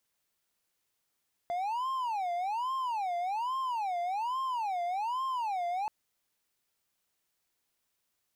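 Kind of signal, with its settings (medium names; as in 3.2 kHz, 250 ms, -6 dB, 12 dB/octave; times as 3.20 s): siren wail 694–1060 Hz 1.2 per s triangle -28 dBFS 4.38 s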